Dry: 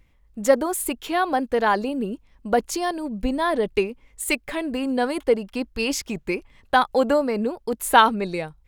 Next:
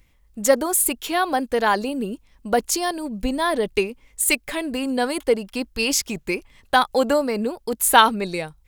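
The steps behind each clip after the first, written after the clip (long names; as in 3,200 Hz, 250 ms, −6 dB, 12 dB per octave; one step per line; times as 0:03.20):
high-shelf EQ 3,700 Hz +10 dB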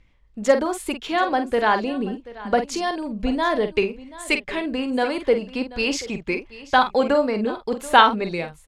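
low-pass filter 3,900 Hz 12 dB per octave
double-tracking delay 47 ms −9 dB
single-tap delay 733 ms −18 dB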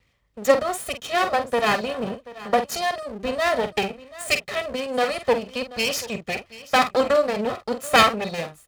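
lower of the sound and its delayed copy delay 1.6 ms
high-pass filter 89 Hz 12 dB per octave
high-shelf EQ 6,400 Hz +6 dB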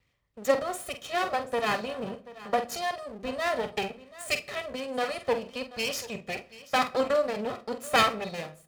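convolution reverb RT60 0.55 s, pre-delay 3 ms, DRR 13 dB
level −7 dB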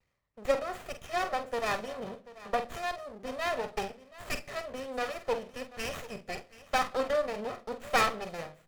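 low-shelf EQ 430 Hz −5.5 dB
pitch vibrato 0.34 Hz 11 cents
windowed peak hold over 9 samples
level −1.5 dB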